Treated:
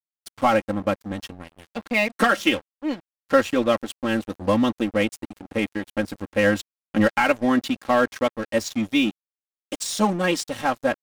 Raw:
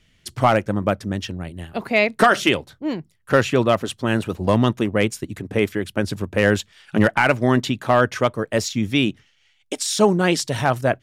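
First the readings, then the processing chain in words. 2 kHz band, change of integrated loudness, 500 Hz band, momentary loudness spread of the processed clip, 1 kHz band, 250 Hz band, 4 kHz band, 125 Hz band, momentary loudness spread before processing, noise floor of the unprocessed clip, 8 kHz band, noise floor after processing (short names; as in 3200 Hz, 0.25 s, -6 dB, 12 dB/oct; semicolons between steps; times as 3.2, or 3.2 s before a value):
-3.0 dB, -3.0 dB, -3.0 dB, 11 LU, -3.0 dB, -1.5 dB, -3.5 dB, -10.5 dB, 11 LU, -61 dBFS, -4.5 dB, under -85 dBFS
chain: comb 3.7 ms, depth 88%; crossover distortion -30 dBFS; gain -4 dB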